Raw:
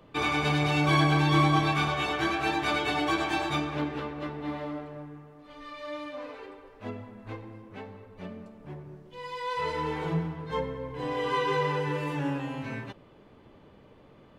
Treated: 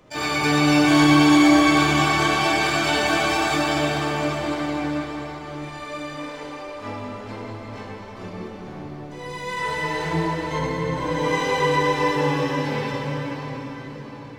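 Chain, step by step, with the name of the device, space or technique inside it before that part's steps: shimmer-style reverb (harmony voices +12 st -4 dB; reverberation RT60 5.9 s, pre-delay 24 ms, DRR -5 dB)

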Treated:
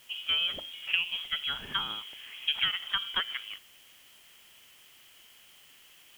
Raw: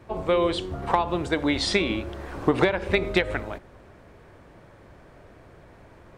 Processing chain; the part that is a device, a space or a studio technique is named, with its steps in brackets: scrambled radio voice (band-pass 350–2700 Hz; frequency inversion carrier 3.6 kHz; white noise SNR 24 dB); trim -6 dB

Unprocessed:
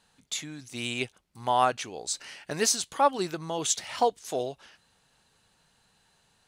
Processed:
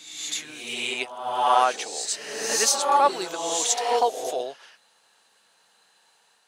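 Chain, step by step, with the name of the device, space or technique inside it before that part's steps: ghost voice (reverse; reverberation RT60 1.0 s, pre-delay 68 ms, DRR 1 dB; reverse; high-pass 470 Hz 12 dB/octave); trim +3 dB

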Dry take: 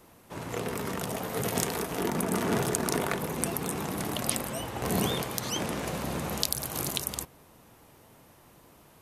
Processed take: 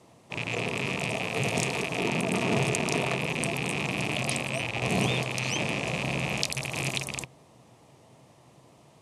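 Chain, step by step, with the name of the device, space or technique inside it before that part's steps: car door speaker with a rattle (rattle on loud lows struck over -40 dBFS, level -18 dBFS; cabinet simulation 92–9000 Hz, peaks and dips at 130 Hz +8 dB, 660 Hz +4 dB, 1.5 kHz -10 dB)

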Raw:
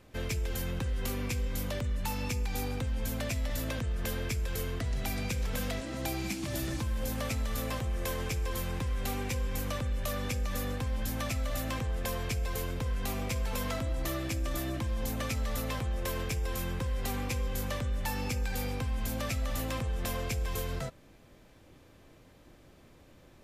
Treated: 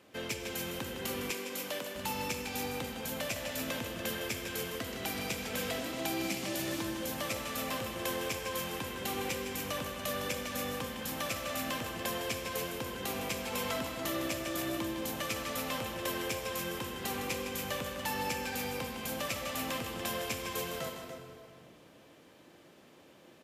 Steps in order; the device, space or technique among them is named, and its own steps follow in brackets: stadium PA (high-pass 220 Hz 12 dB/octave; peaking EQ 3 kHz +4 dB 0.27 oct; loudspeakers at several distances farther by 54 m -9 dB, 99 m -10 dB; reverberation RT60 2.5 s, pre-delay 44 ms, DRR 6.5 dB); 1.31–1.95 s: high-pass 270 Hz 12 dB/octave

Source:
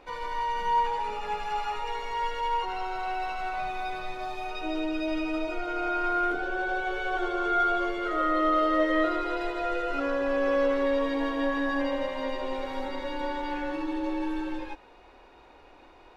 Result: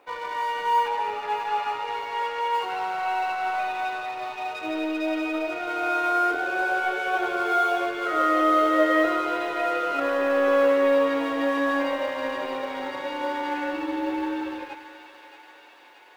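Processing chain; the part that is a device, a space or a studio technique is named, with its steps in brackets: phone line with mismatched companding (band-pass 360–3500 Hz; companding laws mixed up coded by A); 0.88–2.54 s: treble shelf 6.7 kHz -6 dB; thinning echo 627 ms, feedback 75%, high-pass 1 kHz, level -10.5 dB; simulated room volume 1300 m³, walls mixed, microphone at 0.37 m; trim +6 dB

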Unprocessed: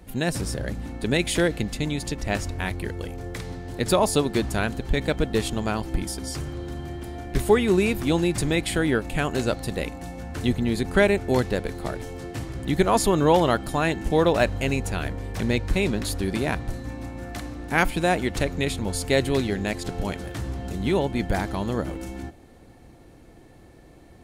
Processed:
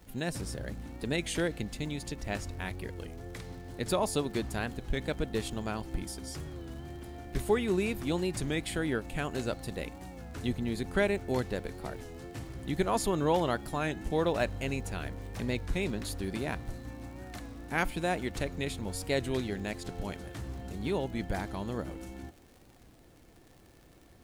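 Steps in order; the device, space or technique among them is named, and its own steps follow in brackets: warped LP (warped record 33 1/3 rpm, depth 100 cents; crackle 90 per s -37 dBFS; pink noise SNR 33 dB); trim -9 dB

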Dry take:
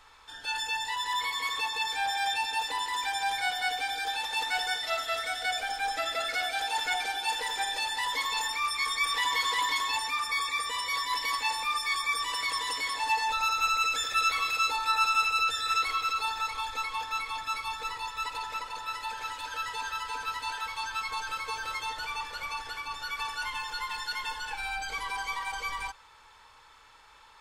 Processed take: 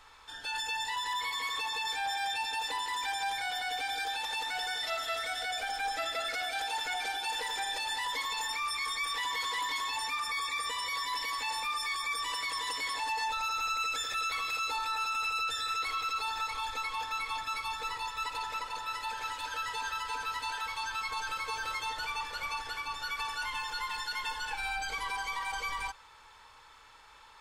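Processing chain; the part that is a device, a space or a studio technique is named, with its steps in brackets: soft clipper into limiter (saturation -18 dBFS, distortion -24 dB; peak limiter -26.5 dBFS, peak gain reduction 7.5 dB)

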